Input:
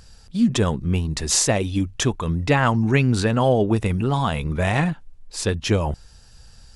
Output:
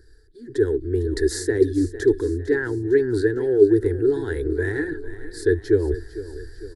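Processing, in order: high shelf 5500 Hz -10 dB; reverse; compressor 6:1, threshold -28 dBFS, peak gain reduction 14.5 dB; reverse; fixed phaser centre 490 Hz, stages 4; AGC gain up to 11.5 dB; EQ curve 110 Hz 0 dB, 180 Hz -17 dB, 300 Hz +13 dB, 420 Hz +15 dB, 600 Hz -23 dB, 1700 Hz +14 dB, 2600 Hz -26 dB, 4200 Hz -2 dB, 6200 Hz -10 dB, 10000 Hz +2 dB; on a send: feedback echo 0.453 s, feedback 53%, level -14.5 dB; on the sum: gain -4 dB

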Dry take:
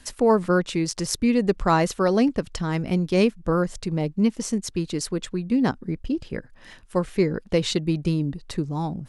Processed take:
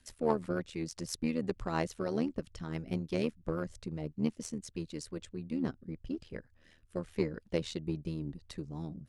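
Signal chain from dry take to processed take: rotary speaker horn 6 Hz, later 0.9 Hz, at 4.82; in parallel at -11.5 dB: one-sided clip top -27 dBFS, bottom -13.5 dBFS; on the sum: AM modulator 79 Hz, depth 55%; added harmonics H 3 -23 dB, 6 -30 dB, 7 -37 dB, 8 -45 dB, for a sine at -7.5 dBFS; gain -7.5 dB

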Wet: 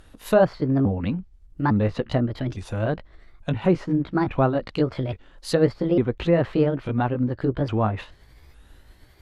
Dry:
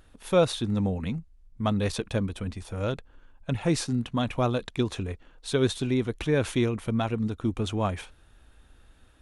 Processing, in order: repeated pitch sweeps +5.5 st, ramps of 0.854 s; treble ducked by the level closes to 1600 Hz, closed at -25 dBFS; gain +6 dB

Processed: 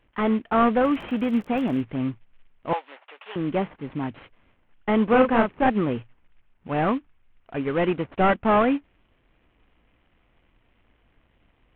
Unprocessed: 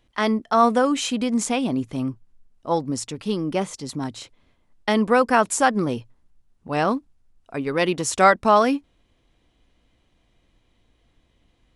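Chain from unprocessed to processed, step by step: CVSD 16 kbps; 0.83–1.79 crackle 53/s -37 dBFS; 2.73–3.36 HPF 660 Hz 24 dB/oct; 5.07–5.7 doubler 35 ms -4.5 dB

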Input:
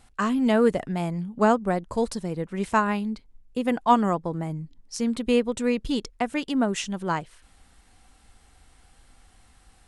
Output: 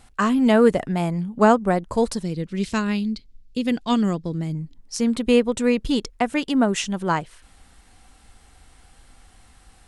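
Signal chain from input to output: 2.23–4.55 EQ curve 200 Hz 0 dB, 370 Hz -3 dB, 560 Hz -8 dB, 870 Hz -15 dB, 4500 Hz +7 dB, 9100 Hz -4 dB; gain +4.5 dB

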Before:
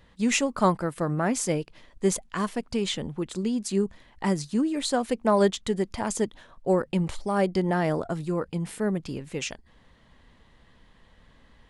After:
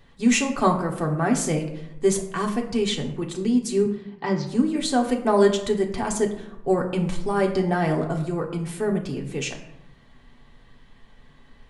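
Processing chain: 3.85–4.47 elliptic band-pass 120–5000 Hz, stop band 40 dB; reverb RT60 0.80 s, pre-delay 3 ms, DRR 0.5 dB

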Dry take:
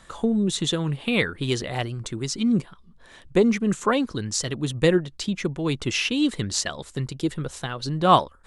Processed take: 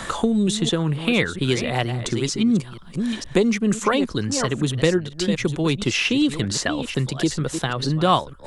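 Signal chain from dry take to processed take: reverse delay 0.463 s, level -12 dB; three-band squash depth 70%; gain +2.5 dB

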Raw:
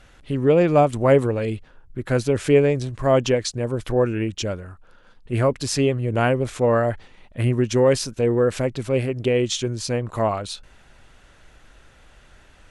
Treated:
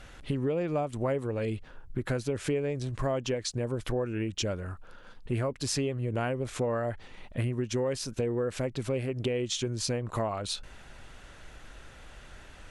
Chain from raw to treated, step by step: compressor 6:1, threshold -30 dBFS, peak gain reduction 18 dB; gain +2 dB

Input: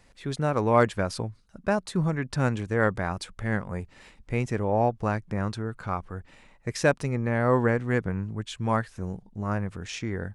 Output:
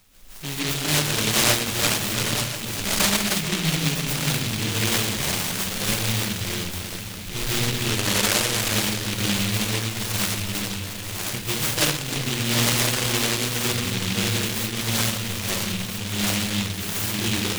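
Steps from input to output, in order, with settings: reverse delay 0.445 s, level -9 dB; high shelf 2300 Hz +7 dB; notches 60/120/180/240 Hz; compressor 6:1, threshold -28 dBFS, peak gain reduction 13.5 dB; time stretch by phase-locked vocoder 1.7×; on a send: echo with dull and thin repeats by turns 0.312 s, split 1200 Hz, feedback 85%, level -12 dB; on the sum: digital reverb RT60 0.72 s, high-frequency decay 0.3×, pre-delay 95 ms, DRR -7.5 dB; noise-modulated delay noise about 2900 Hz, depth 0.47 ms

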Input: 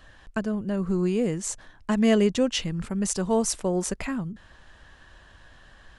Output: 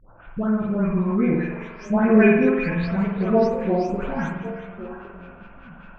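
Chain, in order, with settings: spectral delay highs late, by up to 0.441 s; LFO low-pass sine 5 Hz 810–2900 Hz; delay with a stepping band-pass 0.37 s, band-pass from 3200 Hz, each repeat -1.4 oct, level -7 dB; spring tank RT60 1 s, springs 46 ms, chirp 70 ms, DRR 0 dB; formant shift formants -3 st; gain +2.5 dB

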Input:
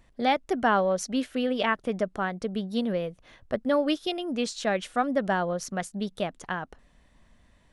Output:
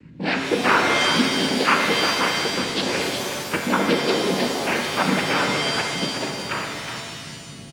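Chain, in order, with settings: 2.65–3.64 spectral limiter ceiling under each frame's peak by 19 dB; bell 1100 Hz +10 dB 0.77 oct; comb 2.7 ms, depth 52%; hum 50 Hz, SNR 17 dB; fixed phaser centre 2100 Hz, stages 4; noise vocoder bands 8; on a send: echo 0.366 s -8.5 dB; on the sum: shimmer reverb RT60 1.7 s, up +7 st, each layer -2 dB, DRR 2.5 dB; gain +4.5 dB

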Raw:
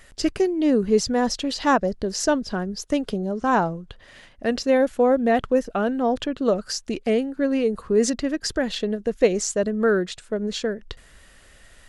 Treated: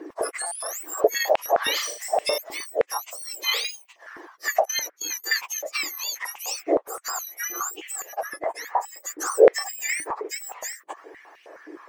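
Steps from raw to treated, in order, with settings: spectrum mirrored in octaves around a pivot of 1800 Hz; 1.72–2.38 flutter echo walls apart 6.8 m, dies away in 0.42 s; phaser 0.78 Hz, delay 1.8 ms, feedback 28%; high shelf 7700 Hz -9.5 dB; 4.65–5.24 gate -30 dBFS, range -24 dB; de-esser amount 55%; 8.02–8.97 high shelf 2000 Hz -9 dB; stuck buffer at 0.46, samples 256, times 8; stepped high-pass 9.6 Hz 320–2700 Hz; gain +3 dB

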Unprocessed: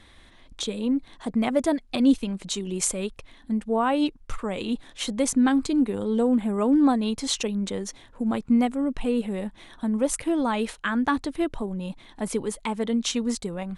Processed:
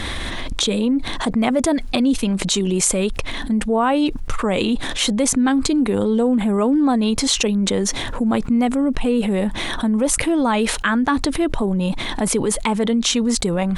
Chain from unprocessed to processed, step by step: fast leveller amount 70%

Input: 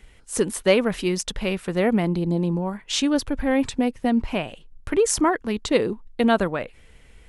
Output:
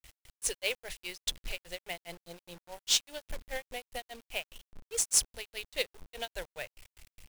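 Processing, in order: passive tone stack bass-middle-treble 10-0-10; fixed phaser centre 490 Hz, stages 4; grains 0.163 s, grains 4.9/s; in parallel at -7 dB: soft clip -24 dBFS, distortion -12 dB; on the sum: companded quantiser 4-bit

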